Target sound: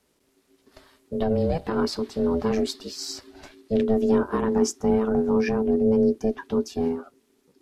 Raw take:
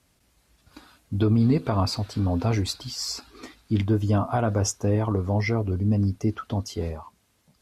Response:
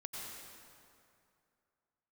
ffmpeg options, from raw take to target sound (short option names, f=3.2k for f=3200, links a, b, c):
-af "asubboost=boost=8.5:cutoff=74,aeval=exprs='val(0)*sin(2*PI*330*n/s)':c=same"